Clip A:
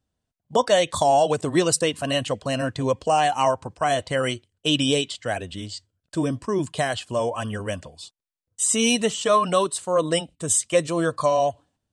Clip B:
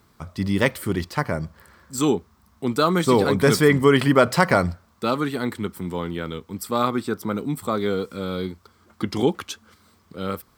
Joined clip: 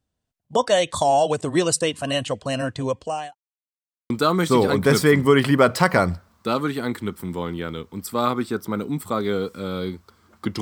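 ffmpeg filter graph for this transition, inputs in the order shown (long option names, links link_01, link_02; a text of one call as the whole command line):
ffmpeg -i cue0.wav -i cue1.wav -filter_complex "[0:a]apad=whole_dur=10.61,atrim=end=10.61,asplit=2[link_01][link_02];[link_01]atrim=end=3.35,asetpts=PTS-STARTPTS,afade=type=out:start_time=2.58:duration=0.77:curve=qsin[link_03];[link_02]atrim=start=3.35:end=4.1,asetpts=PTS-STARTPTS,volume=0[link_04];[1:a]atrim=start=2.67:end=9.18,asetpts=PTS-STARTPTS,afade=type=in:duration=0.004:curve=hsin[link_05];[link_03][link_04][link_05]concat=n=3:v=0:a=1" out.wav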